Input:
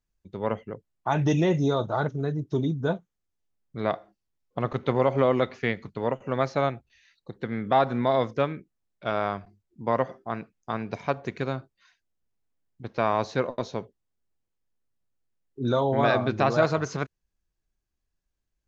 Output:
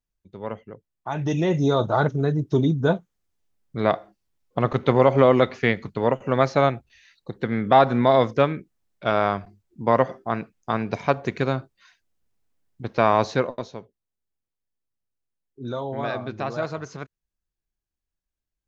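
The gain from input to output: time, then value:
1.12 s -4 dB
1.85 s +6 dB
13.3 s +6 dB
13.8 s -6 dB

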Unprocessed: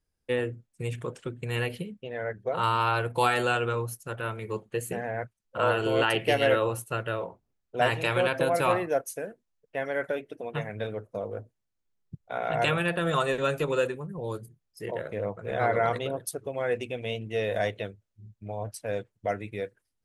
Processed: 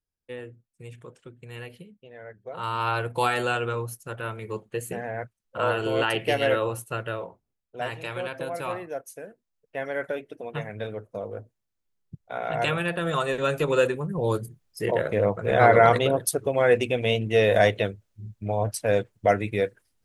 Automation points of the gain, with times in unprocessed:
2.42 s -10 dB
2.89 s 0 dB
7.08 s 0 dB
7.77 s -7 dB
8.98 s -7 dB
9.82 s 0 dB
13.25 s 0 dB
14.26 s +9 dB

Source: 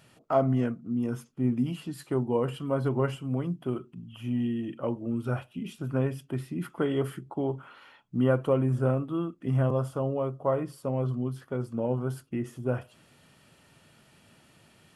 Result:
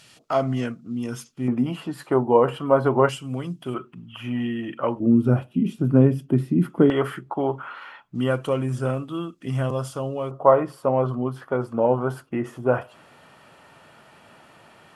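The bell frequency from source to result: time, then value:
bell +14.5 dB 2.8 oct
5100 Hz
from 1.48 s 870 Hz
from 3.09 s 5800 Hz
from 3.74 s 1500 Hz
from 5 s 230 Hz
from 6.9 s 1300 Hz
from 8.15 s 5700 Hz
from 10.31 s 940 Hz

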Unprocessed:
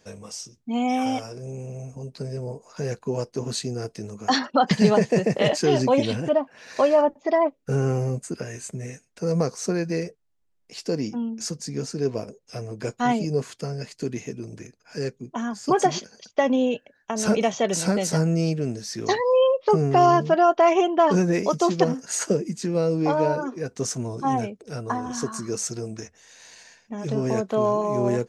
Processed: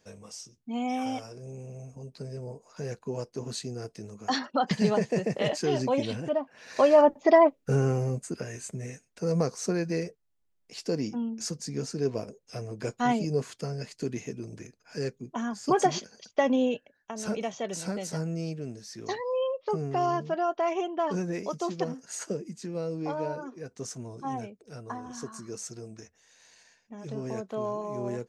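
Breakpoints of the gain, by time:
6.38 s -7 dB
7.27 s +3.5 dB
7.97 s -3.5 dB
16.66 s -3.5 dB
17.17 s -10.5 dB

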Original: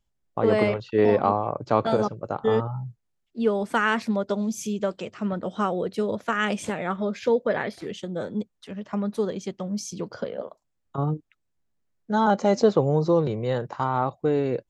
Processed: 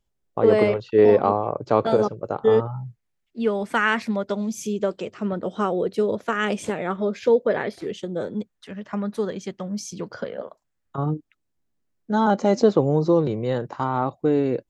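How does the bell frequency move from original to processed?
bell +5.5 dB 0.82 oct
430 Hz
from 2.66 s 2100 Hz
from 4.59 s 400 Hz
from 8.34 s 1700 Hz
from 11.06 s 290 Hz

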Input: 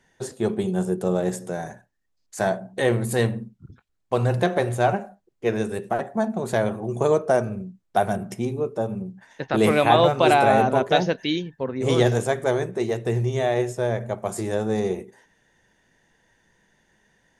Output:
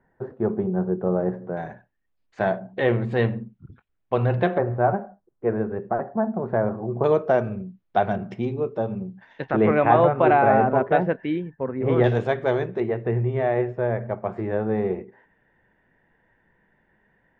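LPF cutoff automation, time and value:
LPF 24 dB/oct
1500 Hz
from 1.57 s 3100 Hz
from 4.58 s 1500 Hz
from 7.04 s 3600 Hz
from 9.51 s 2000 Hz
from 12.04 s 3600 Hz
from 12.8 s 2200 Hz

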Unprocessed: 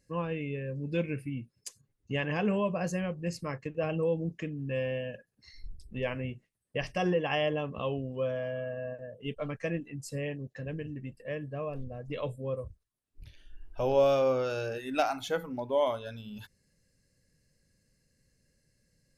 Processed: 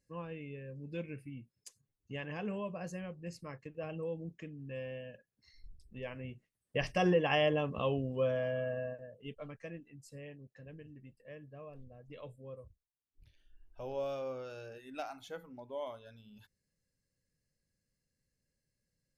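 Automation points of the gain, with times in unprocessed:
6.13 s -10 dB
6.83 s 0 dB
8.77 s 0 dB
9.08 s -7 dB
9.78 s -13.5 dB

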